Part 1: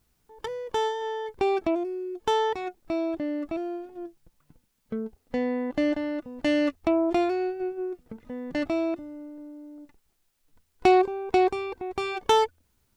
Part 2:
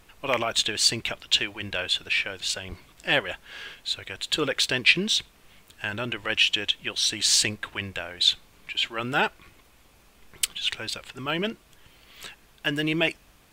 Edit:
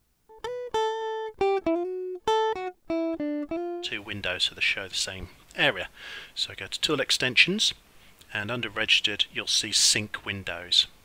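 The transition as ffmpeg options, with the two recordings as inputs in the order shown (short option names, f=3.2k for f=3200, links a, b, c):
-filter_complex "[0:a]apad=whole_dur=11.04,atrim=end=11.04,atrim=end=4.01,asetpts=PTS-STARTPTS[a];[1:a]atrim=start=1.3:end=8.53,asetpts=PTS-STARTPTS[b];[a][b]acrossfade=d=0.2:c1=tri:c2=tri"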